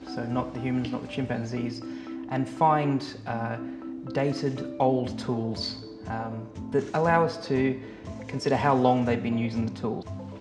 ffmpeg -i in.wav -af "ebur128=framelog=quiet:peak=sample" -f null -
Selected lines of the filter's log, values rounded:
Integrated loudness:
  I:         -27.9 LUFS
  Threshold: -38.1 LUFS
Loudness range:
  LRA:         3.9 LU
  Threshold: -48.0 LUFS
  LRA low:   -29.8 LUFS
  LRA high:  -25.9 LUFS
Sample peak:
  Peak:       -7.6 dBFS